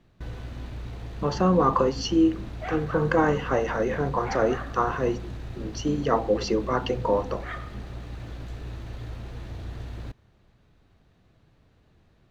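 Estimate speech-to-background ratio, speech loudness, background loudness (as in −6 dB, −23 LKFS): 13.0 dB, −25.0 LKFS, −38.0 LKFS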